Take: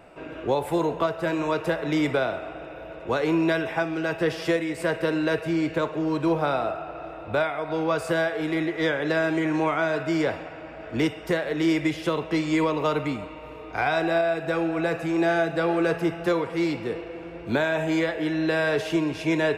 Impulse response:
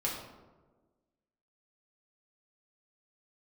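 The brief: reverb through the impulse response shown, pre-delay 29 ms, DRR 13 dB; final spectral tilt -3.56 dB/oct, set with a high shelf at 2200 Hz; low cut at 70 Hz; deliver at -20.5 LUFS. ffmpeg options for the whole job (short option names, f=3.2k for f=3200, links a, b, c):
-filter_complex "[0:a]highpass=70,highshelf=f=2.2k:g=-8.5,asplit=2[a][b];[1:a]atrim=start_sample=2205,adelay=29[c];[b][c]afir=irnorm=-1:irlink=0,volume=-18dB[d];[a][d]amix=inputs=2:normalize=0,volume=5.5dB"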